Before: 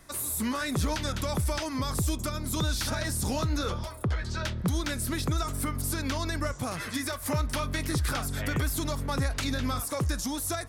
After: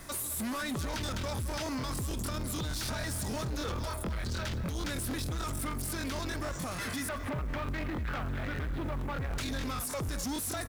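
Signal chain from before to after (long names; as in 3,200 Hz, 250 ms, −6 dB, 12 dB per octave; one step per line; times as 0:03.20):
0:07.07–0:09.38: inverse Chebyshev low-pass filter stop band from 6,400 Hz, stop band 50 dB
brickwall limiter −30 dBFS, peak gain reduction 11 dB
soft clipping −39 dBFS, distortion −11 dB
bit reduction 11 bits
slap from a distant wall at 38 metres, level −12 dB
regular buffer underruns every 0.15 s, samples 1,024, repeat, from 0:00.89
level +7.5 dB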